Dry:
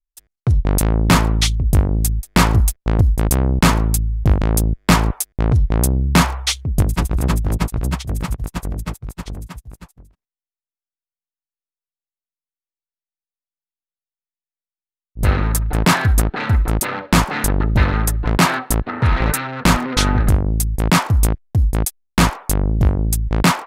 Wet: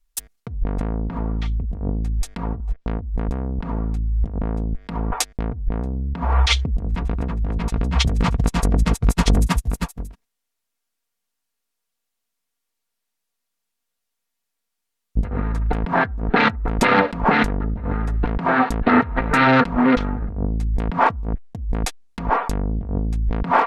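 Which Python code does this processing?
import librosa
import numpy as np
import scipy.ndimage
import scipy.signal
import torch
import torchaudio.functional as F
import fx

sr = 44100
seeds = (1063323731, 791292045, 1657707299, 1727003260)

y = fx.env_lowpass_down(x, sr, base_hz=870.0, full_db=-10.0)
y = fx.over_compress(y, sr, threshold_db=-27.0, ratio=-1.0)
y = y + 0.42 * np.pad(y, (int(4.3 * sr / 1000.0), 0))[:len(y)]
y = F.gain(torch.from_numpy(y), 5.0).numpy()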